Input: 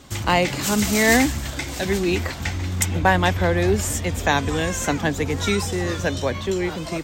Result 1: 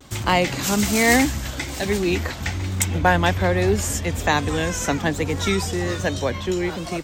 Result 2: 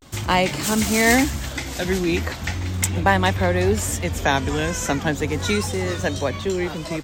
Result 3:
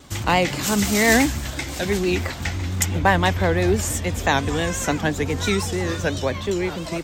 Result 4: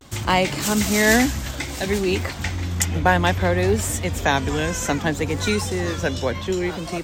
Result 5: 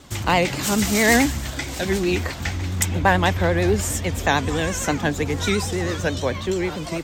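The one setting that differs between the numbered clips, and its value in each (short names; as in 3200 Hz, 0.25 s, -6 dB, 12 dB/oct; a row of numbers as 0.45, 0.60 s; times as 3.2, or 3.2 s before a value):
vibrato, rate: 1.2, 0.38, 5.9, 0.6, 9.2 Hz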